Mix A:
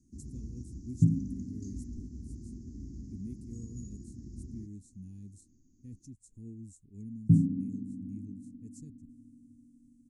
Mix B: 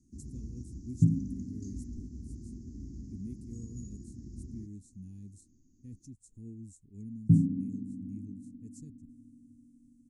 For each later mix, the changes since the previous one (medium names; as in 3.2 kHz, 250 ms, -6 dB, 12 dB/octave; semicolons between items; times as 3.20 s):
no change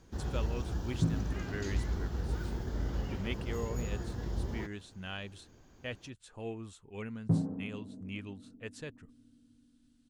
first sound: remove cabinet simulation 100–6400 Hz, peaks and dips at 110 Hz -7 dB, 170 Hz -8 dB, 500 Hz -7 dB, 1.8 kHz +9 dB, 3.3 kHz -8 dB; second sound -7.5 dB; master: remove elliptic band-stop 270–6700 Hz, stop band 40 dB